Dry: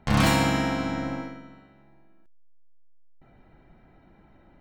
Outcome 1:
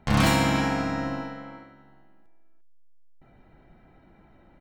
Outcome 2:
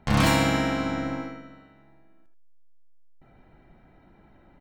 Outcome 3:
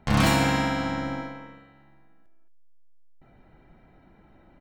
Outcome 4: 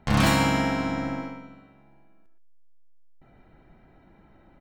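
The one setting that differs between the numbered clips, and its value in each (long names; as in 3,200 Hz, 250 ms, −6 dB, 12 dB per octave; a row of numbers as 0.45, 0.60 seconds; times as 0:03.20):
far-end echo of a speakerphone, delay time: 350, 80, 220, 120 milliseconds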